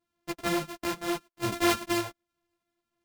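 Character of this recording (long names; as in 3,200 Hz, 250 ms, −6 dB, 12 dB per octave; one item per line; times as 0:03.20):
a buzz of ramps at a fixed pitch in blocks of 128 samples
sample-and-hold tremolo
a shimmering, thickened sound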